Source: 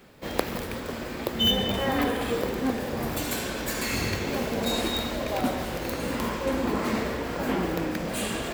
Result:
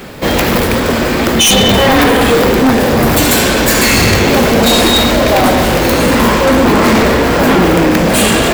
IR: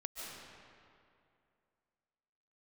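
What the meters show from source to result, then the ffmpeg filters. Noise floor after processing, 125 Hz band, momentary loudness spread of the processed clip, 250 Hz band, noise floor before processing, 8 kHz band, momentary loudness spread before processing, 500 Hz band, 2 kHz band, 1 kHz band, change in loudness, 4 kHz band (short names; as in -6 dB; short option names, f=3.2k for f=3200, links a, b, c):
-13 dBFS, +19.0 dB, 4 LU, +18.5 dB, -35 dBFS, +21.5 dB, 6 LU, +19.0 dB, +20.0 dB, +19.5 dB, +18.5 dB, +16.5 dB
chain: -af "aeval=exprs='0.596*sin(PI/2*7.94*val(0)/0.596)':c=same,aeval=exprs='0.631*(cos(1*acos(clip(val(0)/0.631,-1,1)))-cos(1*PI/2))+0.0316*(cos(5*acos(clip(val(0)/0.631,-1,1)))-cos(5*PI/2))':c=same"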